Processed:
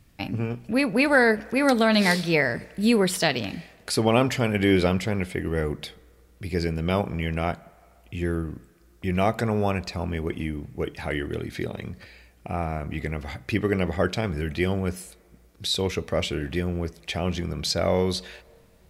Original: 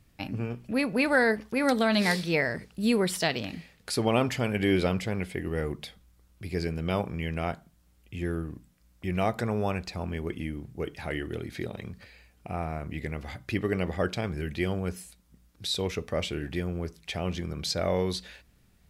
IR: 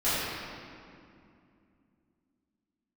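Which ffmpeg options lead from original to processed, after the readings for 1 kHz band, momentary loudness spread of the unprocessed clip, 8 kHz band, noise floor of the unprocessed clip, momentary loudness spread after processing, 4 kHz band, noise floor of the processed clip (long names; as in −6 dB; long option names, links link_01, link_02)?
+4.5 dB, 13 LU, +4.5 dB, −63 dBFS, 13 LU, +4.5 dB, −56 dBFS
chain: -filter_complex "[0:a]asplit=2[link_01][link_02];[link_02]highpass=510,lowpass=2200[link_03];[1:a]atrim=start_sample=2205,adelay=122[link_04];[link_03][link_04]afir=irnorm=-1:irlink=0,volume=-36dB[link_05];[link_01][link_05]amix=inputs=2:normalize=0,volume=4.5dB"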